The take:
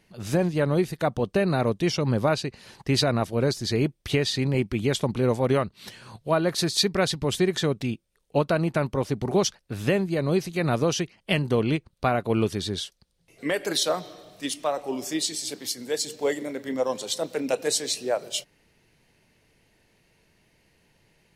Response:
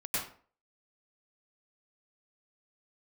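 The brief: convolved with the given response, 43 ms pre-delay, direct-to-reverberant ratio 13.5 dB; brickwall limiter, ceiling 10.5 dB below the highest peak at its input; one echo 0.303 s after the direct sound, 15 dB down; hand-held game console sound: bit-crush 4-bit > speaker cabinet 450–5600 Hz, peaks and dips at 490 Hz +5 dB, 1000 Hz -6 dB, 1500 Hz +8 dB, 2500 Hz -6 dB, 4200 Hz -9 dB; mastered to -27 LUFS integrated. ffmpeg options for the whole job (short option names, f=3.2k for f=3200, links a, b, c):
-filter_complex "[0:a]alimiter=limit=-19.5dB:level=0:latency=1,aecho=1:1:303:0.178,asplit=2[a][b];[1:a]atrim=start_sample=2205,adelay=43[c];[b][c]afir=irnorm=-1:irlink=0,volume=-19dB[d];[a][d]amix=inputs=2:normalize=0,acrusher=bits=3:mix=0:aa=0.000001,highpass=450,equalizer=f=490:t=q:w=4:g=5,equalizer=f=1k:t=q:w=4:g=-6,equalizer=f=1.5k:t=q:w=4:g=8,equalizer=f=2.5k:t=q:w=4:g=-6,equalizer=f=4.2k:t=q:w=4:g=-9,lowpass=f=5.6k:w=0.5412,lowpass=f=5.6k:w=1.3066,volume=4dB"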